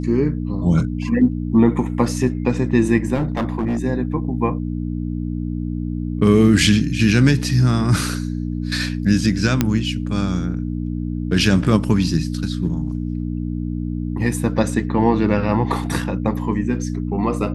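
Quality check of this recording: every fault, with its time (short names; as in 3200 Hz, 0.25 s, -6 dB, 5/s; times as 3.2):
hum 60 Hz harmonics 5 -24 dBFS
3.14–3.79 clipped -16.5 dBFS
9.61 pop -2 dBFS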